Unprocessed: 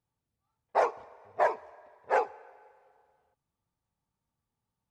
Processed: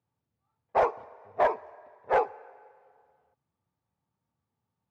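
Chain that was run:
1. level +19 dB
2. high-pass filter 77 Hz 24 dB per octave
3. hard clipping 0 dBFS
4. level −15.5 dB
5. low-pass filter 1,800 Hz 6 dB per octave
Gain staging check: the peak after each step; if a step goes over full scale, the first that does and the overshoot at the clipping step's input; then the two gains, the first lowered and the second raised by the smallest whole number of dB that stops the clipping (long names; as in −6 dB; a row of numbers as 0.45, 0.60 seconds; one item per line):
+6.5, +6.5, 0.0, −15.5, −15.5 dBFS
step 1, 6.5 dB
step 1 +12 dB, step 4 −8.5 dB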